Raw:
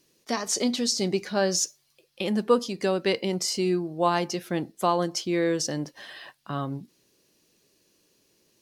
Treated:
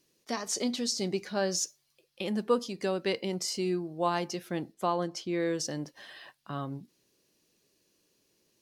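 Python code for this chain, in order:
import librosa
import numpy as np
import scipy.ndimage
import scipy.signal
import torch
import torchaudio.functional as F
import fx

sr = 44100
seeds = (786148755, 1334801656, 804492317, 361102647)

y = fx.high_shelf(x, sr, hz=5400.0, db=-8.0, at=(4.74, 5.4))
y = y * librosa.db_to_amplitude(-5.5)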